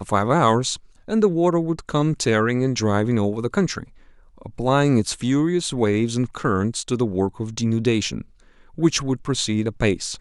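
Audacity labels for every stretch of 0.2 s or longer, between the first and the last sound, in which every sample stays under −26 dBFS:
0.760000	1.080000	silence
3.830000	4.460000	silence
8.210000	8.780000	silence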